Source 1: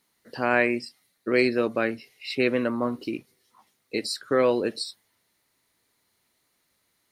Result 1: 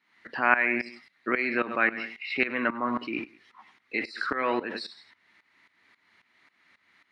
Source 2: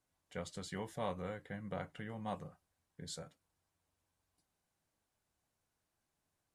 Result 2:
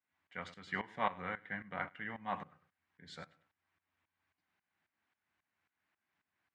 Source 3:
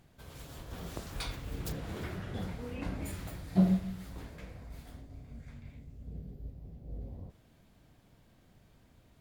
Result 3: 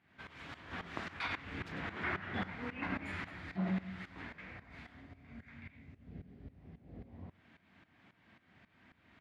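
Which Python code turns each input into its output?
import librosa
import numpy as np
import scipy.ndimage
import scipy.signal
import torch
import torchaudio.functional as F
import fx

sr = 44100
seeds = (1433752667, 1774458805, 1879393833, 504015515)

p1 = fx.graphic_eq(x, sr, hz=(125, 500, 2000), db=(-12, -10, 8))
p2 = fx.echo_feedback(p1, sr, ms=100, feedback_pct=22, wet_db=-15.5)
p3 = fx.over_compress(p2, sr, threshold_db=-40.0, ratio=-1.0)
p4 = p2 + (p3 * 10.0 ** (1.0 / 20.0))
p5 = scipy.signal.sosfilt(scipy.signal.butter(4, 91.0, 'highpass', fs=sr, output='sos'), p4)
p6 = fx.dynamic_eq(p5, sr, hz=940.0, q=0.81, threshold_db=-42.0, ratio=4.0, max_db=6)
p7 = scipy.signal.sosfilt(scipy.signal.butter(2, 2700.0, 'lowpass', fs=sr, output='sos'), p6)
y = fx.tremolo_shape(p7, sr, shape='saw_up', hz=3.7, depth_pct=85)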